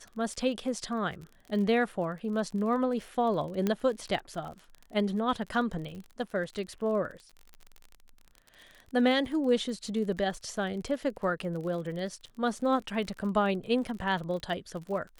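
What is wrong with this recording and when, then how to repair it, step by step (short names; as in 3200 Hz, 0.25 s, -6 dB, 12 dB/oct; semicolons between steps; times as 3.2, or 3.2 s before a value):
crackle 39/s -38 dBFS
3.67 pop -15 dBFS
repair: de-click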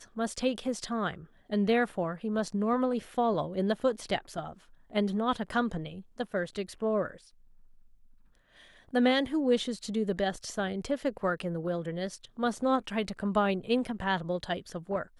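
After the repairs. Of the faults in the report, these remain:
none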